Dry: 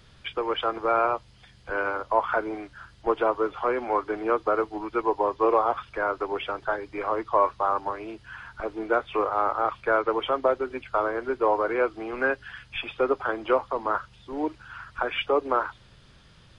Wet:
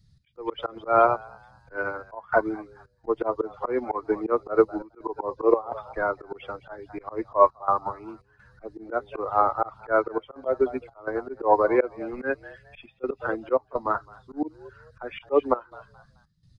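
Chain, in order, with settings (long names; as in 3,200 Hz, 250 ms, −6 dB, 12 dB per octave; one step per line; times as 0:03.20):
spectral dynamics exaggerated over time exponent 1.5
tilt shelving filter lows +5.5 dB, about 1,200 Hz
echo with shifted repeats 214 ms, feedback 32%, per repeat +83 Hz, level −18 dB
volume swells 122 ms
gate pattern "x.xxxxxxxxxx.xx" 84 BPM −12 dB
expander for the loud parts 1.5 to 1, over −40 dBFS
level +8.5 dB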